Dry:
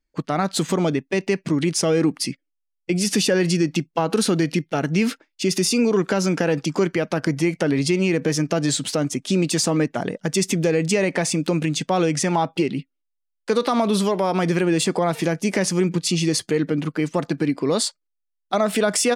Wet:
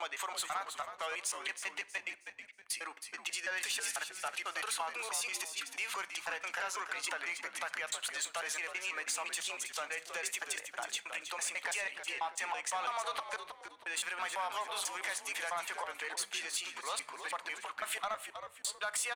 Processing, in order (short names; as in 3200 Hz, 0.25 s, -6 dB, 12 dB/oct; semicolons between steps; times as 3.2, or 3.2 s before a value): slices in reverse order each 0.165 s, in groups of 6; gate -39 dBFS, range -15 dB; HPF 890 Hz 24 dB/oct; bell 5200 Hz -11 dB 0.51 oct; compressor 2.5:1, threshold -28 dBFS, peak gain reduction 5.5 dB; soft clip -22.5 dBFS, distortion -18 dB; frequency-shifting echo 0.319 s, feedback 31%, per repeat -90 Hz, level -9 dB; on a send at -19 dB: reverb RT60 0.75 s, pre-delay 28 ms; on the sum: gain -4.5 dB